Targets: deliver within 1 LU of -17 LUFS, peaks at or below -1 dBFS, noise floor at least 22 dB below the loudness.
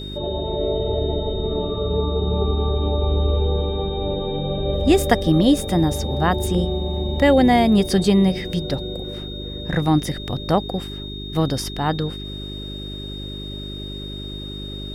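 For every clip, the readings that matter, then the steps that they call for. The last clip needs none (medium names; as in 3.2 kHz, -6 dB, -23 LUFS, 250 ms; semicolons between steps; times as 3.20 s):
hum 50 Hz; highest harmonic 400 Hz; hum level -30 dBFS; steady tone 3.7 kHz; tone level -34 dBFS; loudness -21.5 LUFS; peak level -1.5 dBFS; loudness target -17.0 LUFS
-> de-hum 50 Hz, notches 8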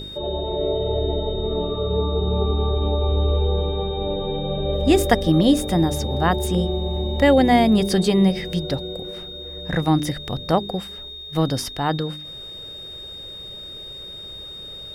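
hum not found; steady tone 3.7 kHz; tone level -34 dBFS
-> band-stop 3.7 kHz, Q 30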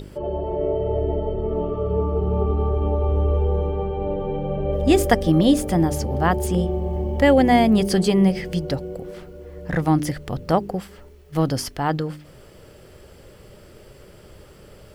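steady tone not found; loudness -21.5 LUFS; peak level -2.0 dBFS; loudness target -17.0 LUFS
-> trim +4.5 dB; peak limiter -1 dBFS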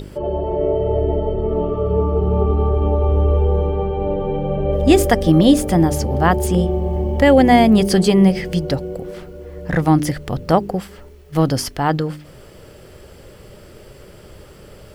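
loudness -17.0 LUFS; peak level -1.0 dBFS; noise floor -42 dBFS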